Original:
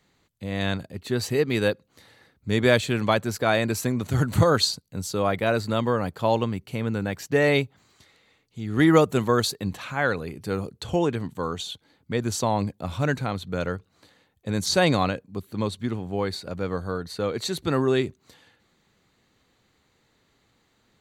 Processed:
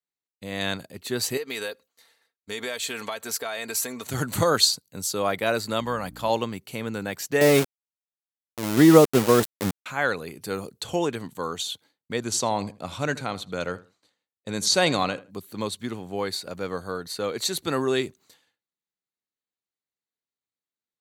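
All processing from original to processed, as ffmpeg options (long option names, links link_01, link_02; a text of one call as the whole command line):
ffmpeg -i in.wav -filter_complex "[0:a]asettb=1/sr,asplit=3[link_01][link_02][link_03];[link_01]atrim=end=1.374[link_04];[link_02]atrim=start=1.37:end=4.07,asetpts=PTS-STARTPTS,afade=type=in:duration=0.004:curve=qsin,afade=type=out:start_time=2.696:duration=0.004:curve=qsin,equalizer=frequency=170:width=1:gain=-15,aecho=1:1:4.4:0.49,atrim=end_sample=119070,acompressor=threshold=-27dB:ratio=6:attack=3.2:release=140:knee=1:detection=peak[link_05];[link_03]atrim=start=4.066[link_06];[link_04][link_05]acrossfade=duration=0.004:curve1=hsin:curve2=qsin[link_07];[link_07][link_06]acrossfade=duration=0.004:curve1=qsin:curve2=hsin,asettb=1/sr,asplit=3[link_08][link_09][link_10];[link_08]atrim=end=5.804[link_11];[link_09]atrim=start=5.8:end=6.3,asetpts=PTS-STARTPTS,afade=type=in:duration=0.004:curve=qsin,afade=type=out:start_time=0.496:duration=0.004:curve=qsin,equalizer=frequency=380:width=1.6:gain=-7.5,aeval=exprs='val(0)+0.0158*(sin(2*PI*60*n/s)+sin(2*PI*2*60*n/s)/2+sin(2*PI*3*60*n/s)/3+sin(2*PI*4*60*n/s)/4+sin(2*PI*5*60*n/s)/5)':channel_layout=same[link_12];[link_10]atrim=start=6.296[link_13];[link_11][link_12]acrossfade=duration=0.004:curve1=hsin:curve2=qsin[link_14];[link_14][link_13]acrossfade=duration=0.004:curve1=qsin:curve2=hsin,asettb=1/sr,asplit=3[link_15][link_16][link_17];[link_15]atrim=end=7.414[link_18];[link_16]atrim=start=7.41:end=9.86,asetpts=PTS-STARTPTS,afade=type=in:duration=0.004:curve=qsin,afade=type=out:start_time=2.446:duration=0.004:curve=qsin,tiltshelf=frequency=1200:gain=8,aeval=exprs='val(0)*gte(abs(val(0)),0.0794)':channel_layout=same[link_19];[link_17]atrim=start=9.856[link_20];[link_18][link_19]acrossfade=duration=0.004:curve1=hsin:curve2=qsin[link_21];[link_21][link_20]acrossfade=duration=0.004:curve1=qsin:curve2=hsin,asettb=1/sr,asplit=3[link_22][link_23][link_24];[link_22]atrim=end=12.204[link_25];[link_23]atrim=start=12.2:end=15.31,asetpts=PTS-STARTPTS,afade=type=in:duration=0.004:curve=qsin,afade=type=out:start_time=3.106:duration=0.004:curve=qsin,lowpass=9300,bandreject=frequency=1700:width=28,asplit=2[link_26][link_27];[link_27]adelay=80,lowpass=frequency=2300:poles=1,volume=-17.5dB,asplit=2[link_28][link_29];[link_29]adelay=80,lowpass=frequency=2300:poles=1,volume=0.23[link_30];[link_26][link_28][link_30]amix=inputs=3:normalize=0,atrim=end_sample=137151[link_31];[link_24]atrim=start=15.306[link_32];[link_25][link_31]acrossfade=duration=0.004:curve1=hsin:curve2=qsin[link_33];[link_33][link_32]acrossfade=duration=0.004:curve1=qsin:curve2=hsin,highpass=frequency=270:poles=1,agate=range=-33dB:threshold=-47dB:ratio=3:detection=peak,aemphasis=mode=production:type=cd" out.wav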